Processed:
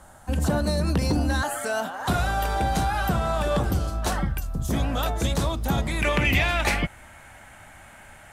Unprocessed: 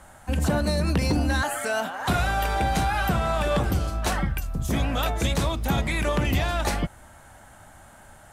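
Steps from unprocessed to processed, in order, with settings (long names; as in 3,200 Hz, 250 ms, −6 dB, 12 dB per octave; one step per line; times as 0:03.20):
parametric band 2,300 Hz −5.5 dB 0.77 octaves, from 0:06.02 +12 dB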